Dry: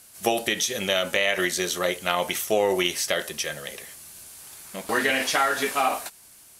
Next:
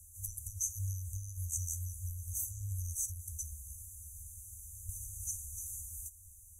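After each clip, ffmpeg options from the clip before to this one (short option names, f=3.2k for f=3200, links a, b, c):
-af "afftfilt=real='re*(1-between(b*sr/4096,100,5900))':imag='im*(1-between(b*sr/4096,100,5900))':win_size=4096:overlap=0.75,bass=f=250:g=12,treble=f=4k:g=-8,volume=1.5dB"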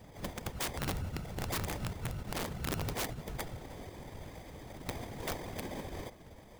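-af "acrusher=samples=32:mix=1:aa=0.000001,afftfilt=real='hypot(re,im)*cos(2*PI*random(0))':imag='hypot(re,im)*sin(2*PI*random(1))':win_size=512:overlap=0.75,aeval=exprs='(mod(70.8*val(0)+1,2)-1)/70.8':c=same,volume=8.5dB"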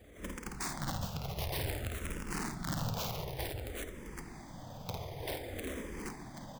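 -filter_complex "[0:a]asplit=2[a][b];[b]aecho=0:1:52|82|406|420|482|782:0.631|0.211|0.251|0.335|0.211|0.562[c];[a][c]amix=inputs=2:normalize=0,asplit=2[d][e];[e]afreqshift=-0.54[f];[d][f]amix=inputs=2:normalize=1"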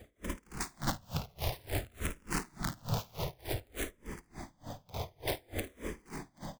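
-filter_complex "[0:a]asplit=2[a][b];[b]aecho=0:1:55|73:0.376|0.316[c];[a][c]amix=inputs=2:normalize=0,aeval=exprs='val(0)*pow(10,-31*(0.5-0.5*cos(2*PI*3.4*n/s))/20)':c=same,volume=6dB"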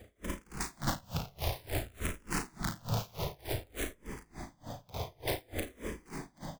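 -filter_complex "[0:a]asplit=2[a][b];[b]adelay=36,volume=-7dB[c];[a][c]amix=inputs=2:normalize=0"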